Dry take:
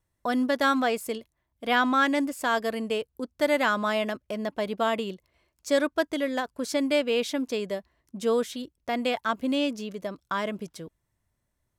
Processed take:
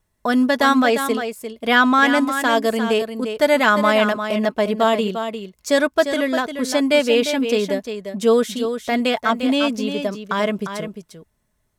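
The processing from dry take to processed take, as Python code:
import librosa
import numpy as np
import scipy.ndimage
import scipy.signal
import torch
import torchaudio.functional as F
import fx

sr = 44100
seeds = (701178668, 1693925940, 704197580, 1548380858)

y = x + 0.36 * np.pad(x, (int(4.7 * sr / 1000.0), 0))[:len(x)]
y = y + 10.0 ** (-8.5 / 20.0) * np.pad(y, (int(350 * sr / 1000.0), 0))[:len(y)]
y = y * librosa.db_to_amplitude(7.5)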